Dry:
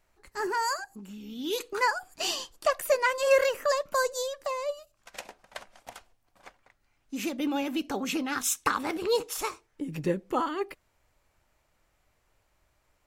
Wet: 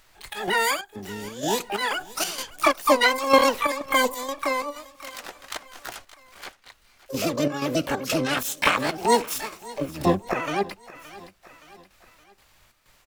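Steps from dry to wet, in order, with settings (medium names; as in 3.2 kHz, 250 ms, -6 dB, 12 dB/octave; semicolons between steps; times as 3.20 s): harmony voices -12 st -7 dB, +7 st -10 dB, +12 st -1 dB; square tremolo 2.1 Hz, depth 60%, duty 70%; on a send: feedback delay 570 ms, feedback 47%, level -22 dB; on the sum: tape noise reduction on one side only encoder only; trim +3.5 dB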